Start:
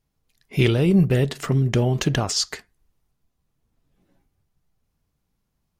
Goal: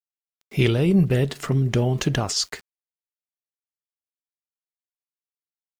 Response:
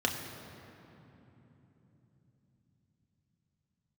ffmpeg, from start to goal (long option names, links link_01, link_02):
-af "aeval=exprs='val(0)*gte(abs(val(0)),0.00562)':channel_layout=same,volume=-1dB"